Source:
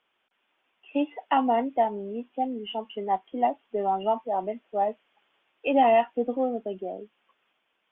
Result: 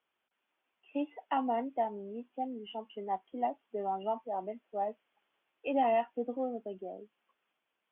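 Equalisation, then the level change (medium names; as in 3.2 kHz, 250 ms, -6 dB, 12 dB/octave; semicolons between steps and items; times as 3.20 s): high-pass 48 Hz; distance through air 170 m; -8.0 dB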